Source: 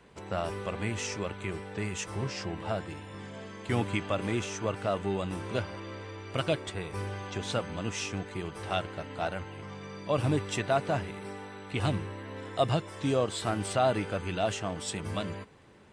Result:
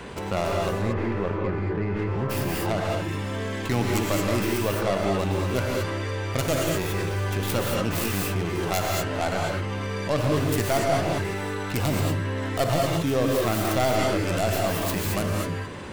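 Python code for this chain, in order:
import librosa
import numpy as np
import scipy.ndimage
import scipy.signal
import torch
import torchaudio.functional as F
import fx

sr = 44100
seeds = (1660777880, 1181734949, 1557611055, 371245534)

y = fx.tracing_dist(x, sr, depth_ms=0.5)
y = fx.lowpass(y, sr, hz=1500.0, slope=12, at=(0.68, 2.29), fade=0.02)
y = fx.rev_gated(y, sr, seeds[0], gate_ms=250, shape='rising', drr_db=-0.5)
y = fx.env_flatten(y, sr, amount_pct=50)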